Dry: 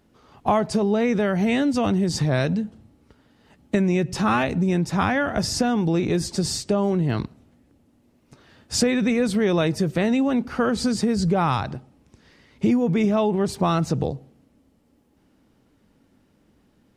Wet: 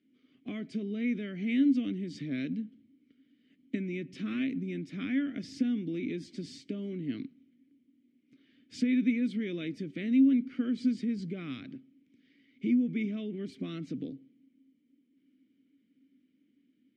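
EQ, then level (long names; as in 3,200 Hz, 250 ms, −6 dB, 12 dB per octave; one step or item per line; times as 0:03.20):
formant filter i
high-pass filter 93 Hz
notch filter 900 Hz, Q 5.6
0.0 dB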